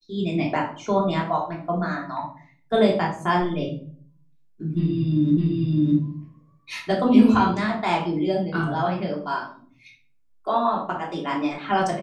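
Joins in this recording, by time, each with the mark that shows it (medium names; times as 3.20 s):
5.37 s: repeat of the last 0.61 s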